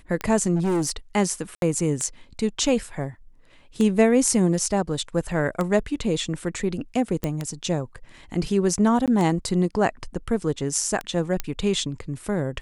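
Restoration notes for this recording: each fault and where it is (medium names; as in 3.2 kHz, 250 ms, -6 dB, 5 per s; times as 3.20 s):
tick 33 1/3 rpm -13 dBFS
0.55–0.91 s: clipped -19.5 dBFS
1.55–1.62 s: dropout 72 ms
7.24 s: pop -12 dBFS
9.06–9.08 s: dropout 17 ms
11.40 s: pop -11 dBFS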